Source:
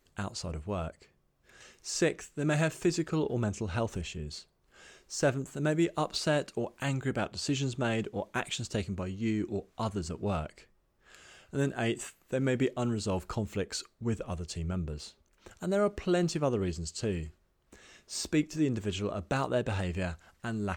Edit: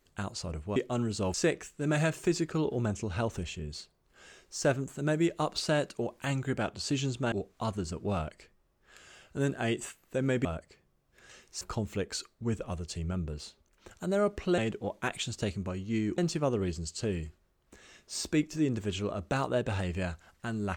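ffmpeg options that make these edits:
-filter_complex "[0:a]asplit=8[a][b][c][d][e][f][g][h];[a]atrim=end=0.762[i];[b]atrim=start=12.628:end=13.212[j];[c]atrim=start=1.918:end=7.902[k];[d]atrim=start=9.498:end=12.632[l];[e]atrim=start=0.758:end=1.922[m];[f]atrim=start=13.208:end=16.182[n];[g]atrim=start=7.898:end=9.502[o];[h]atrim=start=16.178[p];[i][j]acrossfade=d=0.004:c1=hsin:c2=hsin[q];[q][k]acrossfade=d=0.004:c1=hsin:c2=hsin[r];[r][l]acrossfade=d=0.004:c1=hsin:c2=hsin[s];[s][m]acrossfade=d=0.004:c1=hsin:c2=hsin[t];[t][n]acrossfade=d=0.004:c1=hsin:c2=hsin[u];[u][o]acrossfade=d=0.004:c1=hsin:c2=hsin[v];[v][p]acrossfade=d=0.004:c1=hsin:c2=hsin"

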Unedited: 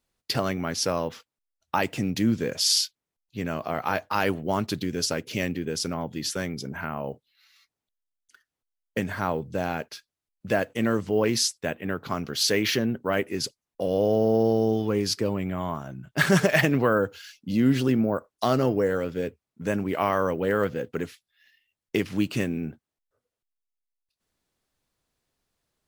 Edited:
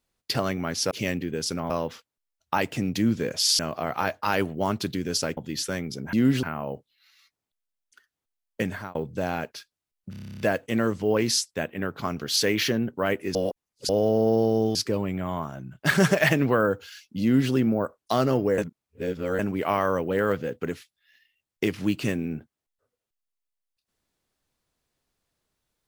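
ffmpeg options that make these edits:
-filter_complex "[0:a]asplit=23[a][b][c][d][e][f][g][h][i][j][k][l][m][n][o][p][q][r][s][t][u][v][w];[a]atrim=end=0.912[x];[b]atrim=start=5.248:end=6.042[y];[c]atrim=start=0.908:end=2.802[z];[d]atrim=start=3.468:end=5.252[aa];[e]atrim=start=6.038:end=6.802[ab];[f]atrim=start=17.538:end=17.842[ac];[g]atrim=start=6.798:end=9.32,asetpts=PTS-STARTPTS,afade=t=out:st=2.272:d=0.25[ad];[h]atrim=start=9.32:end=10.502,asetpts=PTS-STARTPTS,afade=t=in:d=0.004:c=hsin[ae];[i]atrim=start=10.468:end=10.502[af];[j]atrim=start=10.468:end=10.502[ag];[k]atrim=start=10.468:end=10.502[ah];[l]atrim=start=10.468:end=10.502[ai];[m]atrim=start=10.468:end=10.502[aj];[n]atrim=start=10.468:end=10.502[ak];[o]atrim=start=10.468:end=10.502[al];[p]atrim=start=10.468:end=10.502[am];[q]atrim=start=10.468:end=10.502[an];[r]atrim=start=10.468:end=13.422[ao];[s]atrim=start=13.418:end=13.962,asetpts=PTS-STARTPTS,areverse[ap];[t]atrim=start=13.958:end=14.822[aq];[u]atrim=start=15.068:end=18.902[ar];[v]atrim=start=18.898:end=19.712,asetpts=PTS-STARTPTS,areverse[as];[w]atrim=start=19.708[at];[x][y]acrossfade=d=0.004:c1=hsin:c2=hsin[au];[au][z]acrossfade=d=0.004:c1=hsin:c2=hsin[av];[av][aa]acrossfade=d=0.004:c1=hsin:c2=hsin[aw];[aw][ab]acrossfade=d=0.004:c1=hsin:c2=hsin[ax];[ax][ac]acrossfade=d=0.004:c1=hsin:c2=hsin[ay];[ad][ae]concat=n=2:v=0:a=1[az];[ay][az]acrossfade=d=0.004:c1=hsin:c2=hsin[ba];[ba][af]acrossfade=d=0.004:c1=hsin:c2=hsin[bb];[bb][ag]acrossfade=d=0.004:c1=hsin:c2=hsin[bc];[bc][ah]acrossfade=d=0.004:c1=hsin:c2=hsin[bd];[bd][ai]acrossfade=d=0.004:c1=hsin:c2=hsin[be];[be][aj]acrossfade=d=0.004:c1=hsin:c2=hsin[bf];[bf][ak]acrossfade=d=0.004:c1=hsin:c2=hsin[bg];[bg][al]acrossfade=d=0.004:c1=hsin:c2=hsin[bh];[bh][am]acrossfade=d=0.004:c1=hsin:c2=hsin[bi];[bi][an]acrossfade=d=0.004:c1=hsin:c2=hsin[bj];[bj][ao]acrossfade=d=0.004:c1=hsin:c2=hsin[bk];[bk][ap]acrossfade=d=0.004:c1=hsin:c2=hsin[bl];[bl][aq]acrossfade=d=0.004:c1=hsin:c2=hsin[bm];[bm][ar]acrossfade=d=0.004:c1=hsin:c2=hsin[bn];[bn][as]acrossfade=d=0.004:c1=hsin:c2=hsin[bo];[bo][at]acrossfade=d=0.004:c1=hsin:c2=hsin"

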